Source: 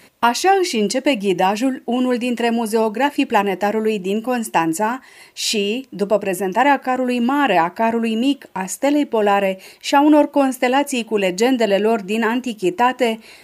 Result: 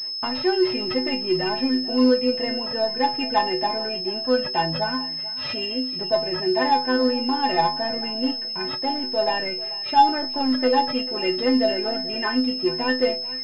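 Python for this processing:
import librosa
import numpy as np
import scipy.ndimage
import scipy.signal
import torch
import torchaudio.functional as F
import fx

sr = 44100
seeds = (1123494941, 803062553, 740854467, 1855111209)

p1 = 10.0 ** (-8.5 / 20.0) * np.tanh(x / 10.0 ** (-8.5 / 20.0))
p2 = fx.stiff_resonator(p1, sr, f0_hz=76.0, decay_s=0.73, stiffness=0.03)
p3 = p2 + fx.echo_single(p2, sr, ms=438, db=-18.0, dry=0)
p4 = fx.pwm(p3, sr, carrier_hz=5200.0)
y = p4 * librosa.db_to_amplitude(8.5)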